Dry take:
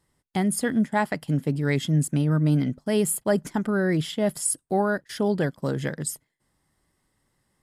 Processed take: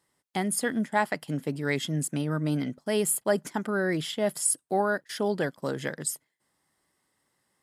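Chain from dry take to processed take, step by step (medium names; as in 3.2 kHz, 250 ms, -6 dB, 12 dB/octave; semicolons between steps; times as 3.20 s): high-pass 390 Hz 6 dB/octave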